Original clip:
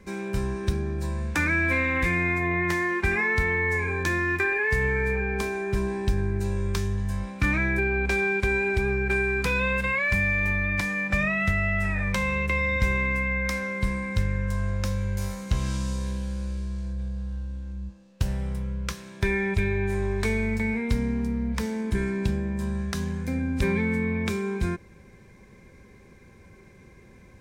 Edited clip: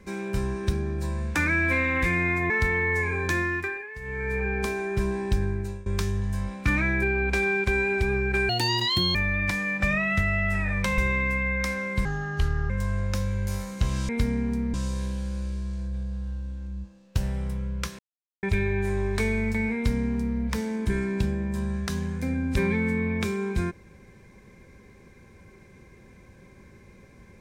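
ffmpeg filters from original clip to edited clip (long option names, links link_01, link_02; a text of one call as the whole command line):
ffmpeg -i in.wav -filter_complex "[0:a]asplit=14[link_01][link_02][link_03][link_04][link_05][link_06][link_07][link_08][link_09][link_10][link_11][link_12][link_13][link_14];[link_01]atrim=end=2.502[link_15];[link_02]atrim=start=3.258:end=4.63,asetpts=PTS-STARTPTS,afade=type=out:start_time=0.892:duration=0.48:silence=0.16788[link_16];[link_03]atrim=start=4.63:end=4.76,asetpts=PTS-STARTPTS,volume=-15.5dB[link_17];[link_04]atrim=start=4.76:end=6.62,asetpts=PTS-STARTPTS,afade=type=in:duration=0.48:silence=0.16788,afade=type=out:start_time=1.32:duration=0.54:curve=qsin:silence=0.0944061[link_18];[link_05]atrim=start=6.62:end=9.254,asetpts=PTS-STARTPTS,afade=type=in:duration=0.004:curve=hsin:silence=0.0944061[link_19];[link_06]atrim=start=9.25:end=10.45,asetpts=PTS-STARTPTS,asetrate=80262,aresample=44100[link_20];[link_07]atrim=start=10.446:end=12.282[link_21];[link_08]atrim=start=12.828:end=13.904[link_22];[link_09]atrim=start=13.9:end=14.4,asetpts=PTS-STARTPTS,asetrate=33957,aresample=44100,atrim=end_sample=28636,asetpts=PTS-STARTPTS[link_23];[link_10]atrim=start=14.396:end=15.792[link_24];[link_11]atrim=start=20.798:end=21.452[link_25];[link_12]atrim=start=15.788:end=19.04,asetpts=PTS-STARTPTS,afade=type=out:start_time=3.248:duration=0.004:curve=hsin[link_26];[link_13]atrim=start=19.04:end=19.48,asetpts=PTS-STARTPTS,volume=0[link_27];[link_14]atrim=start=19.48,asetpts=PTS-STARTPTS,afade=type=in:duration=0.004:curve=hsin[link_28];[link_16][link_17][link_18][link_19]concat=n=4:v=0:a=1[link_29];[link_15][link_29]acrossfade=duration=0.004:curve1=hsin:curve2=hsin[link_30];[link_30][link_20]acrossfade=duration=0.004:curve1=hsin:curve2=hsin[link_31];[link_31][link_21]acrossfade=duration=0.004:curve1=hsin:curve2=hsin[link_32];[link_32][link_22]acrossfade=duration=0.004:curve1=hsin:curve2=hsin[link_33];[link_33][link_23]acrossfade=duration=0.004:curve1=hsin:curve2=hsin[link_34];[link_34][link_24]acrossfade=duration=0.004:curve1=hsin:curve2=hsin[link_35];[link_35][link_25]acrossfade=duration=0.004:curve1=hsin:curve2=hsin[link_36];[link_26][link_27][link_28]concat=n=3:v=0:a=1[link_37];[link_36][link_37]acrossfade=duration=0.004:curve1=hsin:curve2=hsin" out.wav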